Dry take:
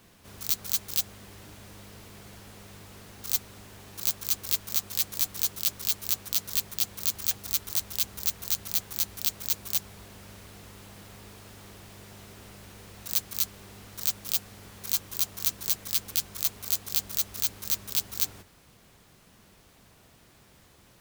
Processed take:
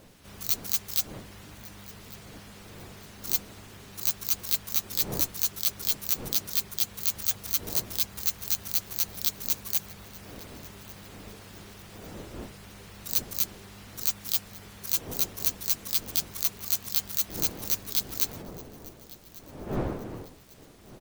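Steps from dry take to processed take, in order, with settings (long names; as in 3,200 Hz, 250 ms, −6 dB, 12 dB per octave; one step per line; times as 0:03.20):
spectral magnitudes quantised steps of 15 dB
wind on the microphone 430 Hz −46 dBFS
repeating echo 1,146 ms, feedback 40%, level −21 dB
level +1 dB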